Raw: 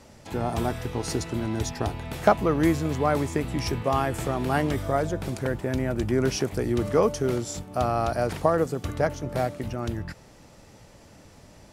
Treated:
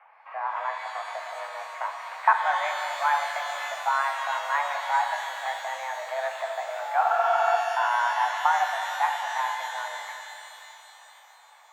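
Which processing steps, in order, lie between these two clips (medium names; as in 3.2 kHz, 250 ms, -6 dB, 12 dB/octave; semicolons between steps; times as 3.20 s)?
mistuned SSB +270 Hz 460–2100 Hz; spectral freeze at 7.05 s, 0.51 s; pitch-shifted reverb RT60 3.1 s, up +12 st, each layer -8 dB, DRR 3.5 dB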